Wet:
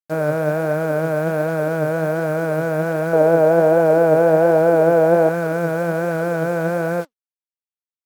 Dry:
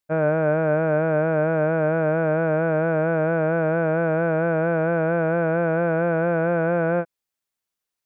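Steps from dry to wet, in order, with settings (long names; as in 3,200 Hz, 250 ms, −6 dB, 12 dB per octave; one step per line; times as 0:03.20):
0:03.13–0:05.29: flat-topped bell 560 Hz +8.5 dB
bit reduction 7 bits
flanger 1.3 Hz, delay 0.4 ms, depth 8.2 ms, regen +75%
level +5 dB
SBC 128 kbit/s 48,000 Hz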